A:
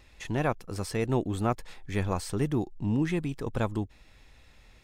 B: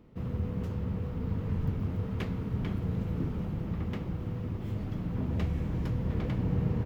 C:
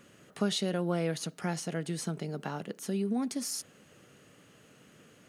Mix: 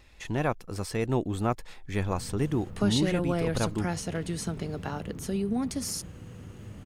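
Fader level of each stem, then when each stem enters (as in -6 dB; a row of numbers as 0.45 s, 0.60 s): 0.0 dB, -9.5 dB, +2.0 dB; 0.00 s, 1.95 s, 2.40 s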